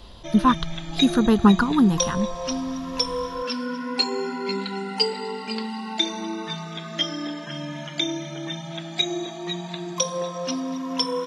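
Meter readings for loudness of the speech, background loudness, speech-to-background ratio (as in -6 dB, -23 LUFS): -20.5 LUFS, -27.5 LUFS, 7.0 dB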